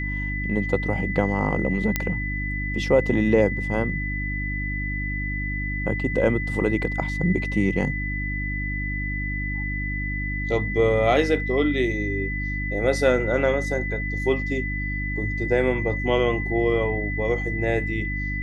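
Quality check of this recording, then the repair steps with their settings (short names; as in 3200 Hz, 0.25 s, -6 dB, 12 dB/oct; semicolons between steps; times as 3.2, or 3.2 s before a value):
hum 50 Hz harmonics 6 -29 dBFS
tone 2000 Hz -29 dBFS
1.96 pop -6 dBFS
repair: de-click; notch 2000 Hz, Q 30; de-hum 50 Hz, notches 6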